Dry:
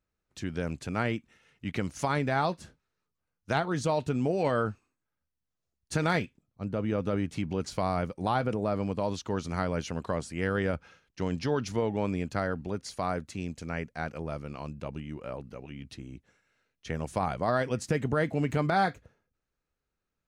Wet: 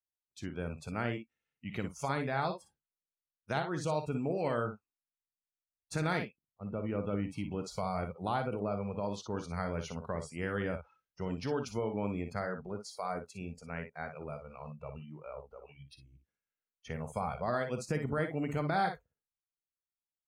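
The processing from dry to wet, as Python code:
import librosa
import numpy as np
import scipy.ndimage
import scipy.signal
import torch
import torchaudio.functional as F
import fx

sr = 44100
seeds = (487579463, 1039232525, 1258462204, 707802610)

y = fx.room_early_taps(x, sr, ms=(45, 59), db=(-15.0, -8.0))
y = fx.noise_reduce_blind(y, sr, reduce_db=21)
y = y * librosa.db_to_amplitude(-6.0)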